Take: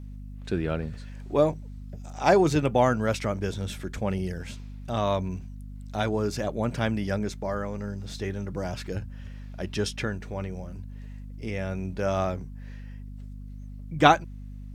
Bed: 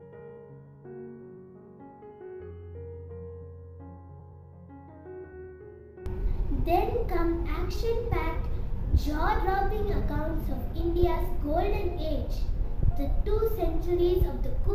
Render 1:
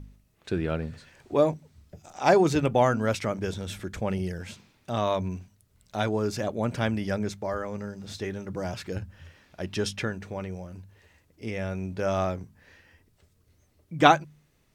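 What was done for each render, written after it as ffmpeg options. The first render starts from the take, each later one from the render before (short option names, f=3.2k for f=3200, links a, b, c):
-af "bandreject=f=50:t=h:w=4,bandreject=f=100:t=h:w=4,bandreject=f=150:t=h:w=4,bandreject=f=200:t=h:w=4,bandreject=f=250:t=h:w=4"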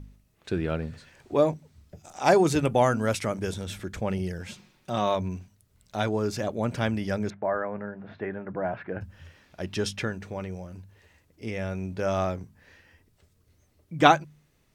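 -filter_complex "[0:a]asettb=1/sr,asplit=3[a][b][c];[a]atrim=end=2.054[d];[b]atrim=start=2.05:end=3.64,asetpts=PTS-STARTPTS,afade=t=in:d=0.004:c=qsin,afade=t=out:st=1.586:d=0.004:c=qsin,equalizer=f=10k:w=1.3:g=9[e];[c]atrim=start=3.636[f];[d][e]acrossfade=d=0.004:c1=hsin:c2=qsin[g];[g][f]acrossfade=d=0.004:c1=qsin:c2=hsin,asettb=1/sr,asplit=3[h][i][j];[h]atrim=end=4.464[k];[i]atrim=start=4.46:end=5.15,asetpts=PTS-STARTPTS,afade=t=in:d=0.004:c=qsin,afade=t=out:st=0.686:d=0.004:c=qsin,aecho=1:1:5.5:0.5,atrim=end_sample=30429[l];[j]atrim=start=5.146[m];[k][l]acrossfade=d=0.004:c1=hsin:c2=qsin[n];[n][m]acrossfade=d=0.004:c1=qsin:c2=hsin,asettb=1/sr,asplit=3[o][p][q];[o]atrim=end=7.304[r];[p]atrim=start=7.3:end=9.01,asetpts=PTS-STARTPTS,afade=t=in:d=0.004:c=qsin,afade=t=out:st=1.706:d=0.004:c=qsin,highpass=140,equalizer=f=680:t=q:w=4:g=8,equalizer=f=1k:t=q:w=4:g=3,equalizer=f=1.6k:t=q:w=4:g=6,lowpass=f=2.2k:w=0.5412,lowpass=f=2.2k:w=1.3066[s];[q]atrim=start=9.006[t];[r][s]acrossfade=d=0.004:c1=hsin:c2=qsin[u];[u][t]acrossfade=d=0.004:c1=qsin:c2=hsin"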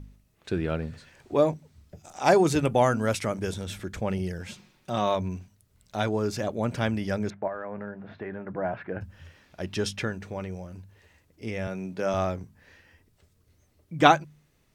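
-filter_complex "[0:a]asettb=1/sr,asplit=3[a][b][c];[a]atrim=end=7.474[d];[b]atrim=start=7.47:end=8.58,asetpts=PTS-STARTPTS,afade=t=in:d=0.004:c=qsin,afade=t=out:st=1.106:d=0.004:c=qsin,acompressor=threshold=-30dB:ratio=6:attack=3.2:release=140:knee=1:detection=peak[e];[c]atrim=start=8.576[f];[d][e]acrossfade=d=0.004:c1=hsin:c2=qsin[g];[g][f]acrossfade=d=0.004:c1=qsin:c2=hsin,asettb=1/sr,asplit=3[h][i][j];[h]atrim=end=11.674[k];[i]atrim=start=11.67:end=12.14,asetpts=PTS-STARTPTS,afade=t=in:d=0.004:c=qsin,afade=t=out:st=0.466:d=0.004:c=qsin,highpass=f=140:w=0.5412,highpass=f=140:w=1.3066[l];[j]atrim=start=12.136[m];[k][l]acrossfade=d=0.004:c1=hsin:c2=qsin[n];[n][m]acrossfade=d=0.004:c1=qsin:c2=hsin"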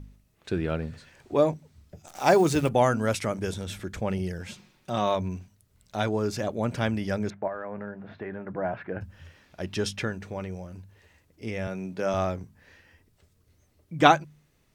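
-filter_complex "[0:a]asettb=1/sr,asplit=3[a][b][c];[a]atrim=end=2.074[d];[b]atrim=start=2.07:end=2.69,asetpts=PTS-STARTPTS,afade=t=in:d=0.004:c=qsin,afade=t=out:st=0.616:d=0.004:c=qsin,acrusher=bits=8:dc=4:mix=0:aa=0.000001[e];[c]atrim=start=2.686[f];[d][e]acrossfade=d=0.004:c1=hsin:c2=qsin[g];[g][f]acrossfade=d=0.004:c1=qsin:c2=hsin"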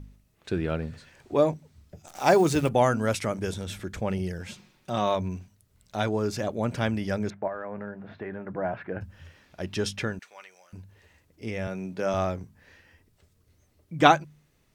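-filter_complex "[0:a]asettb=1/sr,asplit=3[a][b][c];[a]atrim=end=10.194[d];[b]atrim=start=10.19:end=10.73,asetpts=PTS-STARTPTS,afade=t=in:d=0.004:c=qsin,afade=t=out:st=0.536:d=0.004:c=qsin,highpass=1.4k[e];[c]atrim=start=10.726[f];[d][e]acrossfade=d=0.004:c1=hsin:c2=qsin[g];[g][f]acrossfade=d=0.004:c1=qsin:c2=hsin"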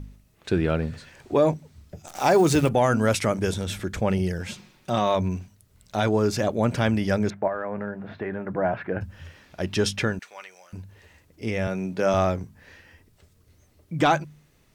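-af "acontrast=39,alimiter=limit=-10.5dB:level=0:latency=1:release=53"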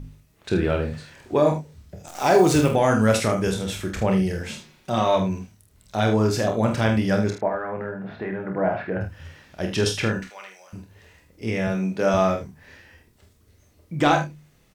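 -filter_complex "[0:a]asplit=2[a][b];[b]adelay=27,volume=-7dB[c];[a][c]amix=inputs=2:normalize=0,aecho=1:1:47|78:0.447|0.266"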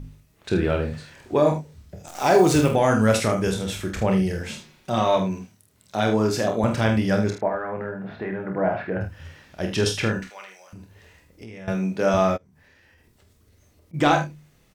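-filter_complex "[0:a]asettb=1/sr,asplit=3[a][b][c];[a]atrim=end=5.174[d];[b]atrim=start=5.17:end=6.64,asetpts=PTS-STARTPTS,afade=t=in:d=0.004:c=qsin,afade=t=out:st=1.466:d=0.004:c=qsin,highpass=130[e];[c]atrim=start=6.636[f];[d][e]acrossfade=d=0.004:c1=hsin:c2=qsin[g];[g][f]acrossfade=d=0.004:c1=qsin:c2=hsin,asettb=1/sr,asplit=3[h][i][j];[h]atrim=end=10.434[k];[i]atrim=start=10.43:end=11.68,asetpts=PTS-STARTPTS,afade=t=in:d=0.004:c=qsin,afade=t=out:st=1.246:d=0.004:c=qsin,acompressor=threshold=-37dB:ratio=6:attack=3.2:release=140:knee=1:detection=peak[l];[j]atrim=start=11.676[m];[k][l]acrossfade=d=0.004:c1=hsin:c2=qsin[n];[n][m]acrossfade=d=0.004:c1=qsin:c2=hsin,asplit=3[o][p][q];[o]afade=t=out:st=12.36:d=0.02[r];[p]acompressor=threshold=-52dB:ratio=16:attack=3.2:release=140:knee=1:detection=peak,afade=t=in:st=12.36:d=0.02,afade=t=out:st=13.93:d=0.02[s];[q]afade=t=in:st=13.93:d=0.02[t];[r][s][t]amix=inputs=3:normalize=0"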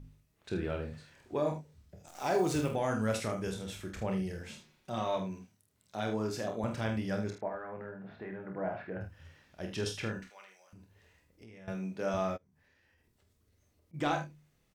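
-af "volume=-13dB"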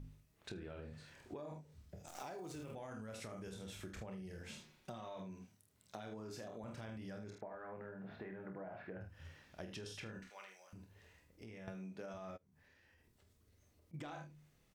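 -af "alimiter=level_in=4.5dB:limit=-24dB:level=0:latency=1:release=47,volume=-4.5dB,acompressor=threshold=-45dB:ratio=12"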